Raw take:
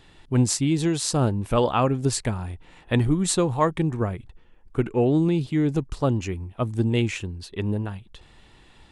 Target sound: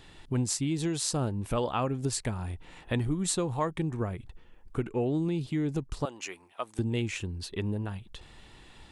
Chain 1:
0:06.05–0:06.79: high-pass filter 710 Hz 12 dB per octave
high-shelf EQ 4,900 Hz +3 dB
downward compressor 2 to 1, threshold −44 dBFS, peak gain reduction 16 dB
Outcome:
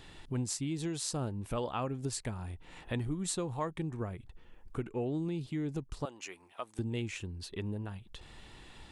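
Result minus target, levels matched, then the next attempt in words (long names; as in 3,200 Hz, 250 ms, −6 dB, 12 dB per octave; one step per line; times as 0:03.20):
downward compressor: peak gain reduction +6 dB
0:06.05–0:06.79: high-pass filter 710 Hz 12 dB per octave
high-shelf EQ 4,900 Hz +3 dB
downward compressor 2 to 1, threshold −32.5 dBFS, peak gain reduction 10 dB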